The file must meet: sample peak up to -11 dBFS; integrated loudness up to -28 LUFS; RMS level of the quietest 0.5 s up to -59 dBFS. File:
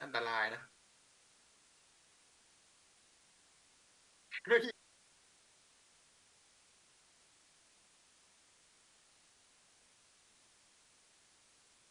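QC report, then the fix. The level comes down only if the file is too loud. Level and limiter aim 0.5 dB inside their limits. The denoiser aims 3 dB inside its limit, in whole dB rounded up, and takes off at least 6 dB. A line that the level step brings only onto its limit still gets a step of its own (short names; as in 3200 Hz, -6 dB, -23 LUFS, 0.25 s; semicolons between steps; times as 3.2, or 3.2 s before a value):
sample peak -17.0 dBFS: OK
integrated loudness -36.0 LUFS: OK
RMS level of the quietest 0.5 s -68 dBFS: OK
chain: none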